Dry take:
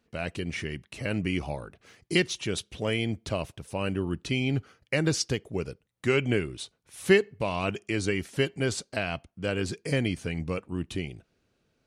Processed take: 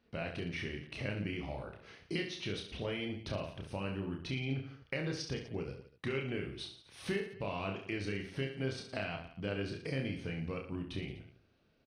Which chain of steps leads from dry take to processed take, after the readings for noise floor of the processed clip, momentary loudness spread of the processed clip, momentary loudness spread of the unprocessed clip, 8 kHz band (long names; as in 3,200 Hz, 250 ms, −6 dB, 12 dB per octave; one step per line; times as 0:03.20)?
−69 dBFS, 6 LU, 10 LU, −16.5 dB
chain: Savitzky-Golay smoothing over 15 samples
downward compressor 3 to 1, threshold −37 dBFS, peak gain reduction 16.5 dB
reverse bouncing-ball delay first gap 30 ms, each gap 1.25×, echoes 5
level −2 dB